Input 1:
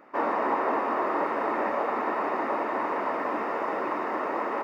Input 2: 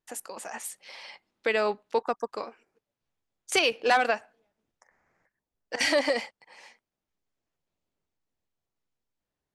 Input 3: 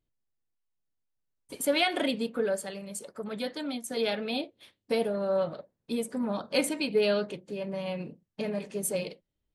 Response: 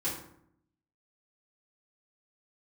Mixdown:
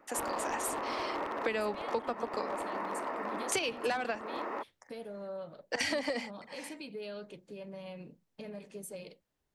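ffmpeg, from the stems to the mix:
-filter_complex "[0:a]aeval=exprs='0.0944*(abs(mod(val(0)/0.0944+3,4)-2)-1)':c=same,volume=0.398[s0];[1:a]volume=1.33[s1];[2:a]acompressor=threshold=0.0178:ratio=2,alimiter=level_in=1.33:limit=0.0631:level=0:latency=1:release=84,volume=0.75,volume=0.398[s2];[s0][s1][s2]amix=inputs=3:normalize=0,acrossover=split=190[s3][s4];[s4]acompressor=threshold=0.0316:ratio=10[s5];[s3][s5]amix=inputs=2:normalize=0"

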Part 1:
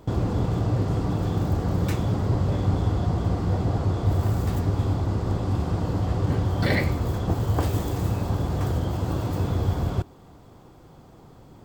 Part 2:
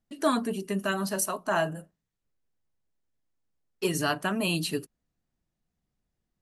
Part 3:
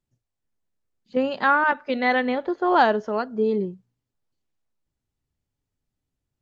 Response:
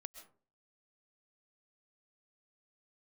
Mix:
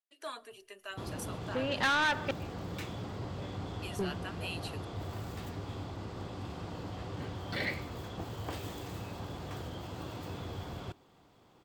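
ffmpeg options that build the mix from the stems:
-filter_complex "[0:a]lowshelf=f=130:g=-10,adelay=900,volume=0.251[s0];[1:a]highpass=f=400:w=0.5412,highpass=f=400:w=1.3066,volume=0.126,asplit=3[s1][s2][s3];[s2]volume=0.299[s4];[2:a]acompressor=threshold=0.1:ratio=6,adelay=400,volume=0.794,asplit=3[s5][s6][s7];[s5]atrim=end=2.31,asetpts=PTS-STARTPTS,afade=t=out:st=2.306:d=0.004:c=hsin[s8];[s6]atrim=start=2.31:end=3.99,asetpts=PTS-STARTPTS,volume=0[s9];[s7]atrim=start=3.99,asetpts=PTS-STARTPTS,afade=t=in:d=0.004:c=hsin[s10];[s8][s9][s10]concat=n=3:v=0:a=1,asplit=2[s11][s12];[s12]volume=0.596[s13];[s3]apad=whole_len=300644[s14];[s11][s14]sidechaincompress=threshold=0.00282:ratio=8:attack=16:release=258[s15];[3:a]atrim=start_sample=2205[s16];[s4][s13]amix=inputs=2:normalize=0[s17];[s17][s16]afir=irnorm=-1:irlink=0[s18];[s0][s1][s15][s18]amix=inputs=4:normalize=0,asoftclip=type=tanh:threshold=0.0422,equalizer=f=2900:t=o:w=1.7:g=8"

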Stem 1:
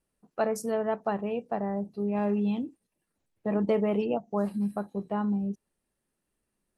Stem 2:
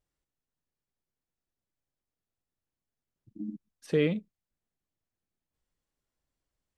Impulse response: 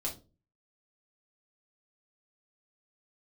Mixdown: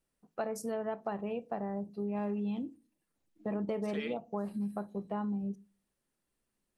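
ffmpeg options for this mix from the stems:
-filter_complex "[0:a]volume=0.596,asplit=2[s0][s1];[s1]volume=0.141[s2];[1:a]highpass=930,volume=0.841[s3];[2:a]atrim=start_sample=2205[s4];[s2][s4]afir=irnorm=-1:irlink=0[s5];[s0][s3][s5]amix=inputs=3:normalize=0,acompressor=threshold=0.0251:ratio=4"

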